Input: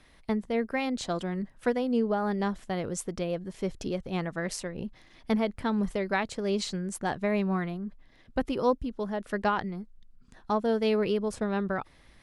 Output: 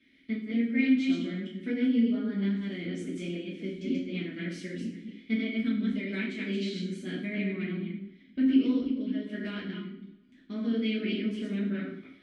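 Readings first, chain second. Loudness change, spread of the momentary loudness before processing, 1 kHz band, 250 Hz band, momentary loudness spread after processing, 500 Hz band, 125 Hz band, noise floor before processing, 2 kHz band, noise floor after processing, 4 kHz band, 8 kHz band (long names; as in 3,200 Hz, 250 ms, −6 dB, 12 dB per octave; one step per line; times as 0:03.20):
−0.5 dB, 8 LU, below −20 dB, +3.0 dB, 12 LU, −9.0 dB, −1.5 dB, −58 dBFS, −1.5 dB, −58 dBFS, −0.5 dB, below −10 dB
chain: delay that plays each chunk backwards 134 ms, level −2 dB
formant filter i
coupled-rooms reverb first 0.53 s, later 2.1 s, from −26 dB, DRR −7 dB
level +2.5 dB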